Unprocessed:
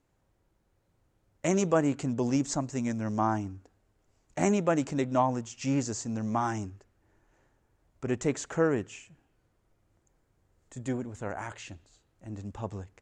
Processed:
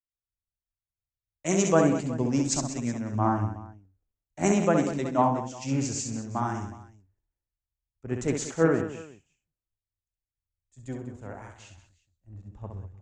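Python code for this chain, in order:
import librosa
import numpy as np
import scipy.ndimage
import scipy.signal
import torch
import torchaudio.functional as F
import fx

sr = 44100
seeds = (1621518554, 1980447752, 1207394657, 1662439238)

y = fx.low_shelf(x, sr, hz=110.0, db=5.5)
y = fx.echo_multitap(y, sr, ms=(67, 132, 195, 370), db=(-5.0, -15.0, -9.0, -11.5))
y = fx.band_widen(y, sr, depth_pct=100)
y = y * 10.0 ** (-1.5 / 20.0)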